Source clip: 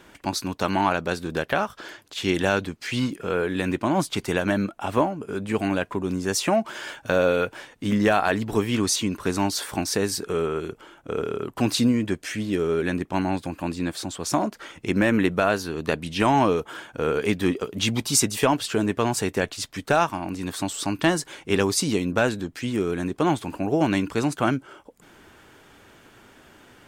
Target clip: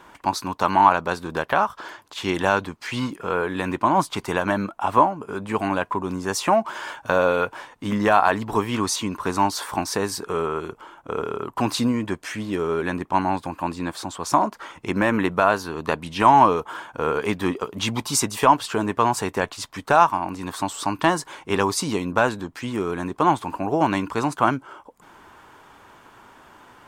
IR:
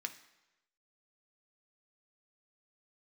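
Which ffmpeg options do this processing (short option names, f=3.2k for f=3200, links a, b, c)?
-af "equalizer=f=1k:t=o:w=0.84:g=13,volume=-2dB"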